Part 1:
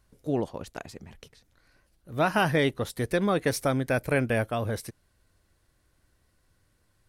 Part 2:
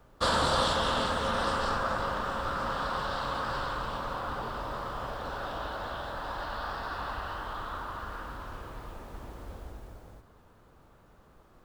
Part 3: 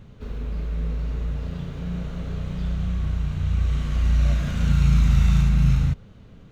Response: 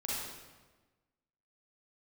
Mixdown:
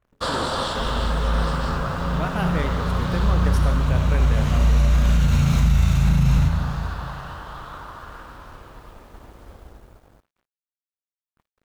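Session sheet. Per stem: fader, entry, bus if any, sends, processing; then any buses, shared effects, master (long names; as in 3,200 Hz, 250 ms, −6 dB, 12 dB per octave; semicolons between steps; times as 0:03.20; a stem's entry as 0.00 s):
−8.0 dB, 0.00 s, send −6.5 dB, no echo send, adaptive Wiener filter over 9 samples
+1.5 dB, 0.00 s, no send, no echo send, noise gate with hold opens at −47 dBFS; dead-zone distortion −53 dBFS
+2.5 dB, 0.55 s, send −7 dB, echo send −13.5 dB, high-shelf EQ 8,300 Hz +9 dB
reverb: on, RT60 1.3 s, pre-delay 35 ms
echo: repeating echo 451 ms, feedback 42%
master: brickwall limiter −9.5 dBFS, peak gain reduction 8 dB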